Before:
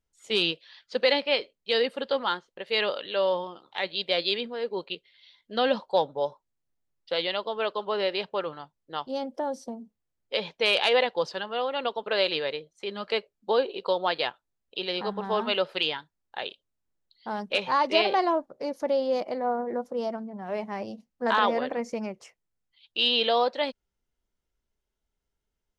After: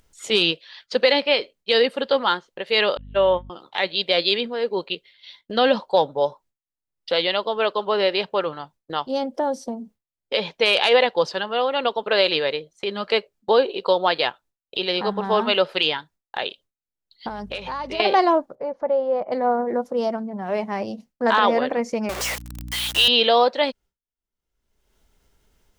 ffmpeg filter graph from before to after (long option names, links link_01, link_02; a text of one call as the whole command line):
ffmpeg -i in.wav -filter_complex "[0:a]asettb=1/sr,asplit=3[link_01][link_02][link_03];[link_01]atrim=end=2.974[link_04];[link_02]atrim=start=2.97:end=3.5,asetpts=PTS-STARTPTS,afade=type=in:duration=0.004:curve=qsin,afade=type=out:start_time=0.526:duration=0.004:curve=qsin,agate=range=-37dB:threshold=-29dB:ratio=16:release=100:detection=peak,aeval=exprs='val(0)+0.00501*(sin(2*PI*50*n/s)+sin(2*PI*2*50*n/s)/2+sin(2*PI*3*50*n/s)/3+sin(2*PI*4*50*n/s)/4+sin(2*PI*5*50*n/s)/5)':channel_layout=same,asuperstop=centerf=5000:order=4:qfactor=1.3[link_05];[link_03]atrim=start=3.496[link_06];[link_04][link_05]acrossfade=duration=0.004:curve1=hsin:curve2=qsin[link_07];[link_07][link_06]acrossfade=duration=0.004:curve1=qsin:curve2=hsin,asettb=1/sr,asplit=3[link_08][link_09][link_10];[link_08]atrim=end=17.284[link_11];[link_09]atrim=start=17.28:end=18,asetpts=PTS-STARTPTS,afade=type=in:duration=0.004:curve=qsin,afade=type=out:start_time=0.716:duration=0.004:curve=qsin,acompressor=threshold=-38dB:ratio=3:attack=3.2:release=140:knee=1:detection=peak,aeval=exprs='val(0)+0.00224*(sin(2*PI*50*n/s)+sin(2*PI*2*50*n/s)/2+sin(2*PI*3*50*n/s)/3+sin(2*PI*4*50*n/s)/4+sin(2*PI*5*50*n/s)/5)':channel_layout=same[link_12];[link_10]atrim=start=17.996[link_13];[link_11][link_12]acrossfade=duration=0.004:curve1=hsin:curve2=qsin[link_14];[link_14][link_13]acrossfade=duration=0.004:curve1=qsin:curve2=hsin,asettb=1/sr,asplit=3[link_15][link_16][link_17];[link_15]atrim=end=18.554[link_18];[link_16]atrim=start=18.55:end=19.32,asetpts=PTS-STARTPTS,afade=type=in:duration=0.004:curve=qsin,afade=type=out:start_time=0.766:duration=0.004:curve=qsin,lowpass=1200,equalizer=frequency=290:width_type=o:width=0.9:gain=-11[link_19];[link_17]atrim=start=19.316[link_20];[link_18][link_19]acrossfade=duration=0.004:curve1=hsin:curve2=qsin[link_21];[link_21][link_20]acrossfade=duration=0.004:curve1=qsin:curve2=hsin,asettb=1/sr,asplit=3[link_22][link_23][link_24];[link_22]atrim=end=22.094[link_25];[link_23]atrim=start=22.09:end=23.08,asetpts=PTS-STARTPTS,afade=type=in:duration=0.004:curve=qsin,afade=type=out:start_time=0.986:duration=0.004:curve=qsin,aeval=exprs='val(0)+0.5*0.0447*sgn(val(0))':channel_layout=same,highpass=570,aeval=exprs='val(0)+0.00562*(sin(2*PI*60*n/s)+sin(2*PI*2*60*n/s)/2+sin(2*PI*3*60*n/s)/3+sin(2*PI*4*60*n/s)/4+sin(2*PI*5*60*n/s)/5)':channel_layout=same[link_26];[link_24]atrim=start=23.076[link_27];[link_25][link_26]acrossfade=duration=0.004:curve1=hsin:curve2=qsin[link_28];[link_28][link_27]acrossfade=duration=0.004:curve1=qsin:curve2=hsin,agate=range=-33dB:threshold=-50dB:ratio=3:detection=peak,acompressor=mode=upward:threshold=-34dB:ratio=2.5,alimiter=level_in=12.5dB:limit=-1dB:release=50:level=0:latency=1,volume=-5.5dB" out.wav